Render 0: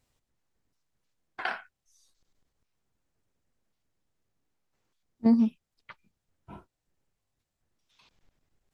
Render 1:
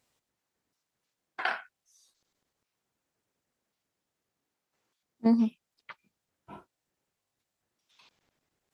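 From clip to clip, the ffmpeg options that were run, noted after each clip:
-af "highpass=f=290:p=1,volume=1.26"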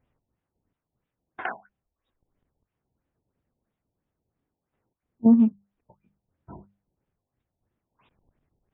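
-af "aemphasis=mode=reproduction:type=riaa,bandreject=f=50:t=h:w=6,bandreject=f=100:t=h:w=6,bandreject=f=150:t=h:w=6,bandreject=f=200:t=h:w=6,afftfilt=real='re*lt(b*sr/1024,940*pow(3900/940,0.5+0.5*sin(2*PI*3*pts/sr)))':imag='im*lt(b*sr/1024,940*pow(3900/940,0.5+0.5*sin(2*PI*3*pts/sr)))':win_size=1024:overlap=0.75"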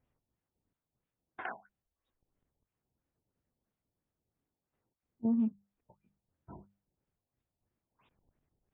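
-af "alimiter=limit=0.133:level=0:latency=1:release=85,volume=0.473"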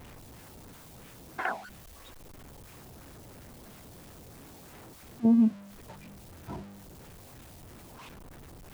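-af "aeval=exprs='val(0)+0.5*0.00299*sgn(val(0))':c=same,volume=2.51"

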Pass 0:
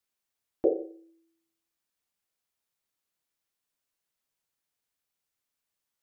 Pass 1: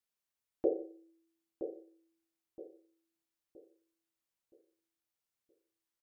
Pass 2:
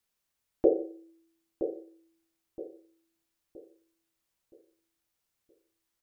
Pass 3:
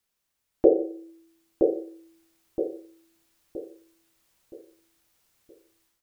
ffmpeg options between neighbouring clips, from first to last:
-filter_complex "[0:a]asplit=2[s0][s1];[s1]adelay=970,lowpass=f=850:p=1,volume=0.376,asplit=2[s2][s3];[s3]adelay=970,lowpass=f=850:p=1,volume=0.41,asplit=2[s4][s5];[s5]adelay=970,lowpass=f=850:p=1,volume=0.41,asplit=2[s6][s7];[s7]adelay=970,lowpass=f=850:p=1,volume=0.41,asplit=2[s8][s9];[s9]adelay=970,lowpass=f=850:p=1,volume=0.41[s10];[s0][s2][s4][s6][s8][s10]amix=inputs=6:normalize=0,volume=0.501"
-af "lowshelf=f=97:g=7.5,volume=2.37"
-af "dynaudnorm=f=530:g=3:m=3.55,volume=1.26"

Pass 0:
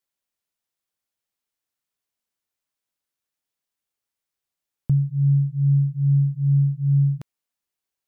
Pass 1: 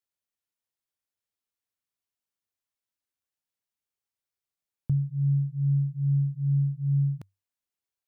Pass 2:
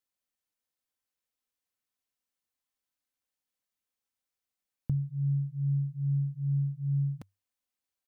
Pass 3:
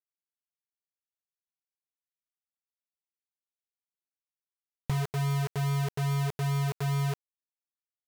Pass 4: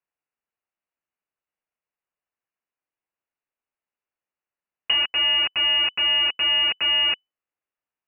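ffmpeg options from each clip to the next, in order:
-af "equalizer=f=97:t=o:w=0.22:g=8.5,volume=0.473"
-af "aecho=1:1:3.9:0.43"
-filter_complex "[0:a]asplit=2[s0][s1];[s1]acompressor=threshold=0.01:ratio=6,volume=1.41[s2];[s0][s2]amix=inputs=2:normalize=0,acrusher=bits=4:mix=0:aa=0.000001,volume=0.75"
-af "aemphasis=mode=production:type=75kf,lowpass=f=2600:t=q:w=0.5098,lowpass=f=2600:t=q:w=0.6013,lowpass=f=2600:t=q:w=0.9,lowpass=f=2600:t=q:w=2.563,afreqshift=-3000,volume=2.37"

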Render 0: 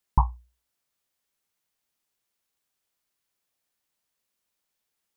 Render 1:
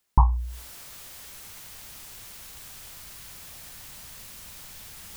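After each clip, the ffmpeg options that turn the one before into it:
-af "asubboost=boost=5.5:cutoff=150,alimiter=limit=0.237:level=0:latency=1:release=21,areverse,acompressor=mode=upward:threshold=0.0562:ratio=2.5,areverse,volume=2"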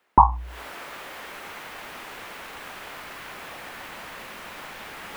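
-filter_complex "[0:a]acrossover=split=240 2600:gain=0.1 1 0.0794[s0][s1][s2];[s0][s1][s2]amix=inputs=3:normalize=0,alimiter=level_in=6.68:limit=0.891:release=50:level=0:latency=1,volume=0.891"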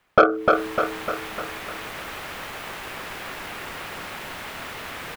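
-filter_complex "[0:a]acontrast=59,aeval=exprs='val(0)*sin(2*PI*380*n/s)':c=same,asplit=2[s0][s1];[s1]aecho=0:1:301|602|903|1204|1505|1806|2107|2408:0.668|0.368|0.202|0.111|0.0612|0.0336|0.0185|0.0102[s2];[s0][s2]amix=inputs=2:normalize=0,volume=0.891"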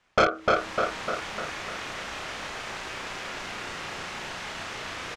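-filter_complex "[0:a]asoftclip=type=tanh:threshold=0.335,lowpass=f=6400:t=q:w=1.7,asplit=2[s0][s1];[s1]adelay=33,volume=0.75[s2];[s0][s2]amix=inputs=2:normalize=0,volume=0.668"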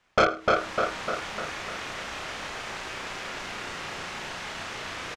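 -af "aecho=1:1:105:0.0944"

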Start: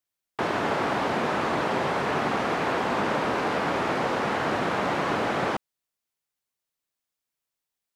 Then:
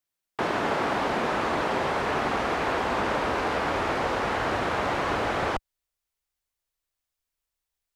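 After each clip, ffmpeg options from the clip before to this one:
-af "asubboost=boost=11.5:cutoff=52"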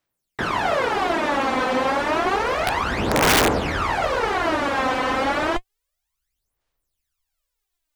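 -af "aphaser=in_gain=1:out_gain=1:delay=3.9:decay=0.74:speed=0.3:type=sinusoidal,aeval=exprs='(mod(3.76*val(0)+1,2)-1)/3.76':c=same,volume=1.19"

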